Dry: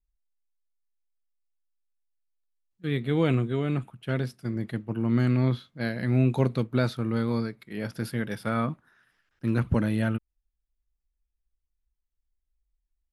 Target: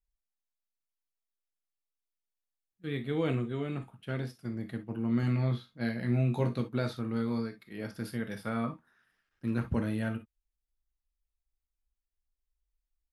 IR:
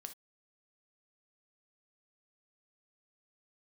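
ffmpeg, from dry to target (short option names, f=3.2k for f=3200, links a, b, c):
-filter_complex "[0:a]asettb=1/sr,asplit=3[a][b][c];[a]atrim=end=5.214[d];[b]atrim=start=5.21:end=6.61,asetpts=PTS-STARTPTS,afade=t=in:d=0.004:c=qsin,afade=t=out:st=1.396:d=0.004:c=qsin,asplit=2[e][f];[f]adelay=17,volume=-6dB[g];[e][g]amix=inputs=2:normalize=0,atrim=end_sample=61740[h];[c]atrim=start=6.606[i];[d][h]acrossfade=d=0.004:c1=hsin:c2=qsin[j];[j][i]acrossfade=d=0.004:c1=qsin:c2=hsin[k];[1:a]atrim=start_sample=2205,asetrate=48510,aresample=44100[l];[k][l]afir=irnorm=-1:irlink=0"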